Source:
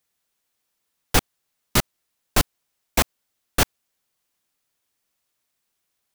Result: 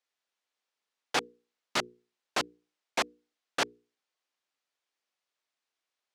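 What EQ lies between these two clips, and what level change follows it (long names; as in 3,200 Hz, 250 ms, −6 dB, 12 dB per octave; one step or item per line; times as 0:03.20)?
high-pass filter 360 Hz 12 dB per octave
low-pass filter 5,300 Hz 12 dB per octave
mains-hum notches 60/120/180/240/300/360/420/480 Hz
−6.0 dB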